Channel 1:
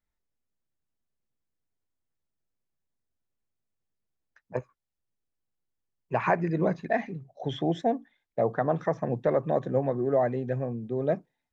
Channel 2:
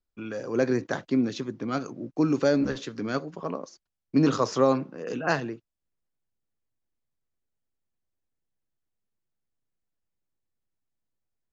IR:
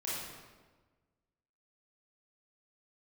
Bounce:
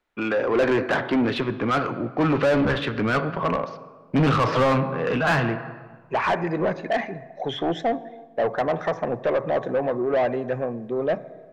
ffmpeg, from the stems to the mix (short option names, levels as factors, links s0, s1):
-filter_complex "[0:a]volume=0.355,asplit=2[s0][s1];[s1]volume=0.1[s2];[1:a]asubboost=boost=11.5:cutoff=100,lowpass=f=3400:w=0.5412,lowpass=f=3400:w=1.3066,volume=0.841,asplit=2[s3][s4];[s4]volume=0.126[s5];[2:a]atrim=start_sample=2205[s6];[s2][s5]amix=inputs=2:normalize=0[s7];[s7][s6]afir=irnorm=-1:irlink=0[s8];[s0][s3][s8]amix=inputs=3:normalize=0,asplit=2[s9][s10];[s10]highpass=f=720:p=1,volume=22.4,asoftclip=type=tanh:threshold=0.251[s11];[s9][s11]amix=inputs=2:normalize=0,lowpass=f=2400:p=1,volume=0.501"